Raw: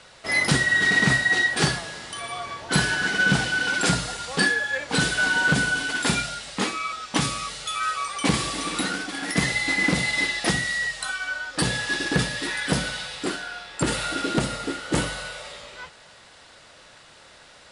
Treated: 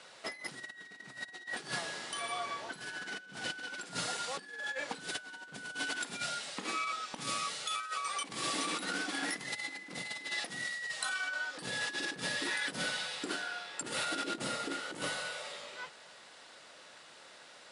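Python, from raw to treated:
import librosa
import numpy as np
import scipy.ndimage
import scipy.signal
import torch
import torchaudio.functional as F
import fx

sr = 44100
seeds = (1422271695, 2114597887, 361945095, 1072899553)

y = scipy.signal.sosfilt(scipy.signal.butter(2, 220.0, 'highpass', fs=sr, output='sos'), x)
y = fx.over_compress(y, sr, threshold_db=-29.0, ratio=-0.5)
y = F.gain(torch.from_numpy(y), -9.0).numpy()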